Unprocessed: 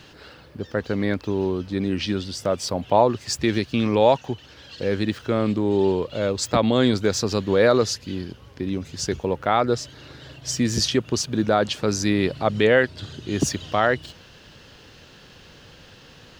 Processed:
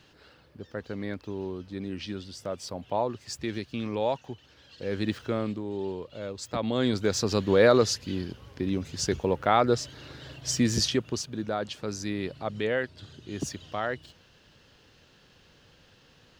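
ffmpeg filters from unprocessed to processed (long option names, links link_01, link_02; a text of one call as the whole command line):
ffmpeg -i in.wav -af "volume=7dB,afade=type=in:start_time=4.79:duration=0.33:silence=0.446684,afade=type=out:start_time=5.12:duration=0.52:silence=0.354813,afade=type=in:start_time=6.47:duration=0.97:silence=0.281838,afade=type=out:start_time=10.62:duration=0.71:silence=0.354813" out.wav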